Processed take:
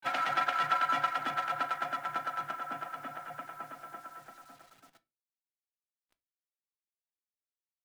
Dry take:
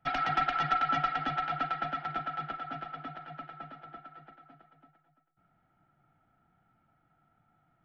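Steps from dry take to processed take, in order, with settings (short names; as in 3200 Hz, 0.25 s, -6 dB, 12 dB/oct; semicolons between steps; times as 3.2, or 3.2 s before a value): Wiener smoothing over 9 samples; gate with hold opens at -59 dBFS; HPF 610 Hz 6 dB/oct; notch 850 Hz, Q 12; in parallel at -2 dB: compressor 8:1, threshold -43 dBFS, peak gain reduction 18 dB; on the sum: requantised 10-bit, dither none; harmoniser -5 st -13 dB, +3 st -14 dB; on a send at -11 dB: reverb RT60 0.25 s, pre-delay 3 ms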